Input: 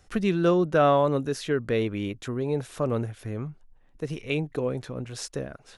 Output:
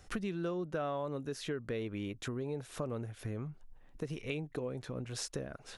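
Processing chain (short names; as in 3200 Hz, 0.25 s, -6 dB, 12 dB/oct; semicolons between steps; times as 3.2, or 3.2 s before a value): compressor 4:1, threshold -38 dBFS, peak gain reduction 18 dB; gain +1 dB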